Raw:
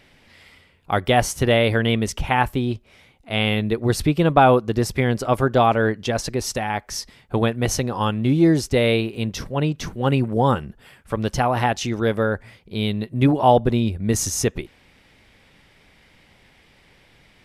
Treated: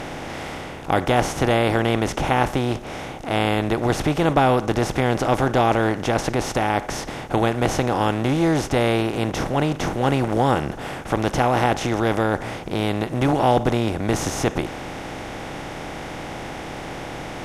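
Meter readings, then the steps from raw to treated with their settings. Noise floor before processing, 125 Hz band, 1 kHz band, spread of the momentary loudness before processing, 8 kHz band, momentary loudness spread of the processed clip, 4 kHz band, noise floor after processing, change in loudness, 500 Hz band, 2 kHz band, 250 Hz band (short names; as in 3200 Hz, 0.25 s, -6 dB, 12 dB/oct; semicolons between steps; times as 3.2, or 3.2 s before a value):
-55 dBFS, -1.5 dB, +0.5 dB, 10 LU, -4.0 dB, 14 LU, -1.5 dB, -33 dBFS, -1.0 dB, -0.5 dB, +0.5 dB, -0.5 dB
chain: per-bin compression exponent 0.4; high shelf 4200 Hz -5 dB; gain -6.5 dB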